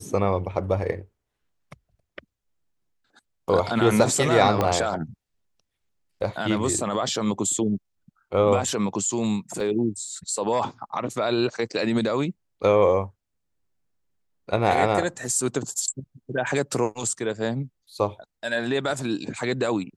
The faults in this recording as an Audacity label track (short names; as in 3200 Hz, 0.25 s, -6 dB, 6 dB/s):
4.610000	4.610000	pop -9 dBFS
9.600000	9.600000	gap 3.2 ms